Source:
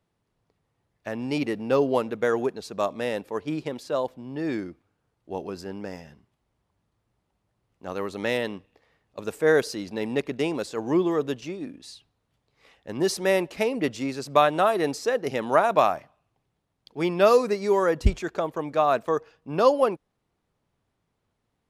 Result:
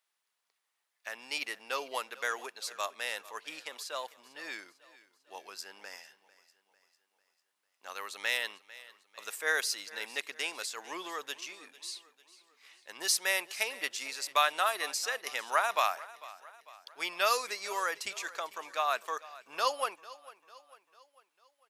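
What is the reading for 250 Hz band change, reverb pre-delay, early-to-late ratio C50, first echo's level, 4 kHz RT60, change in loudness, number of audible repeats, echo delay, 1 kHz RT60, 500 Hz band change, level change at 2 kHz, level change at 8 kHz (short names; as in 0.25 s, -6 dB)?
-26.5 dB, none, none, -19.0 dB, none, -8.5 dB, 3, 0.448 s, none, -17.0 dB, -0.5 dB, +4.5 dB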